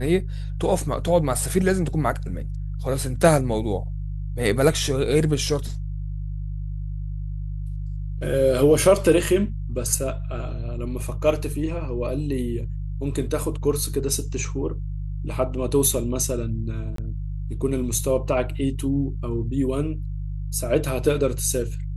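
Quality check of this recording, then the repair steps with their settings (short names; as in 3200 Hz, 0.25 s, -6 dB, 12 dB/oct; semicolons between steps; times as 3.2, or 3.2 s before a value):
hum 50 Hz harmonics 3 -29 dBFS
16.96–16.98 gap 23 ms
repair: de-hum 50 Hz, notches 3; interpolate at 16.96, 23 ms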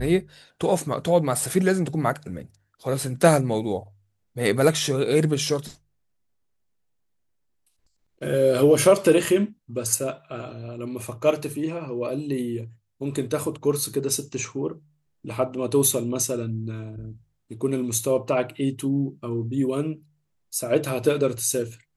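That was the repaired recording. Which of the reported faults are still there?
none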